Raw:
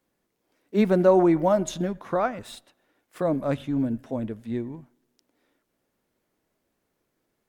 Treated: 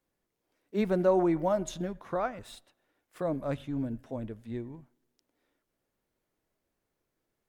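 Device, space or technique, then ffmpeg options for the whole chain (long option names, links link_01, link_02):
low shelf boost with a cut just above: -af "lowshelf=frequency=68:gain=8,equalizer=frequency=230:width_type=o:width=0.77:gain=-3,volume=-6.5dB"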